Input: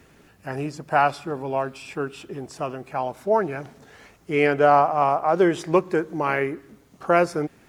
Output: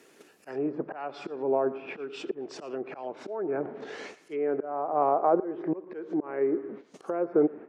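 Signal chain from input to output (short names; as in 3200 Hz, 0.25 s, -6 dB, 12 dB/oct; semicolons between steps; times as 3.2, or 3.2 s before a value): compressor 6:1, threshold -25 dBFS, peak gain reduction 13 dB; gate -50 dBFS, range -14 dB; auto swell 0.467 s; bell 390 Hz +13 dB 1.5 oct; treble ducked by the level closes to 1600 Hz, closed at -29.5 dBFS; HPF 210 Hz 12 dB/oct; high shelf 3500 Hz +6 dB; on a send: thinning echo 0.114 s, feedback 40%, level -20 dB; on the sum: treble ducked by the level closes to 2000 Hz, closed at -30 dBFS; mismatched tape noise reduction encoder only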